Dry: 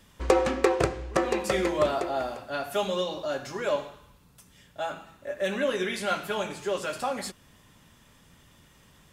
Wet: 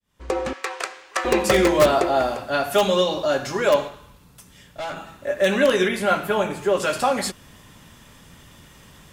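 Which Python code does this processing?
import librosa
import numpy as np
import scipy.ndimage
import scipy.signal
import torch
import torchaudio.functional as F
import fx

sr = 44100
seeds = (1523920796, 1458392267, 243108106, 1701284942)

p1 = fx.fade_in_head(x, sr, length_s=1.45)
p2 = fx.highpass(p1, sr, hz=1200.0, slope=12, at=(0.53, 1.25))
p3 = fx.tube_stage(p2, sr, drive_db=36.0, bias=0.5, at=(3.88, 4.97))
p4 = fx.peak_eq(p3, sr, hz=5100.0, db=-9.5, octaves=2.0, at=(5.88, 6.8))
p5 = (np.mod(10.0 ** (16.5 / 20.0) * p4 + 1.0, 2.0) - 1.0) / 10.0 ** (16.5 / 20.0)
p6 = p4 + F.gain(torch.from_numpy(p5), -8.0).numpy()
y = F.gain(torch.from_numpy(p6), 6.5).numpy()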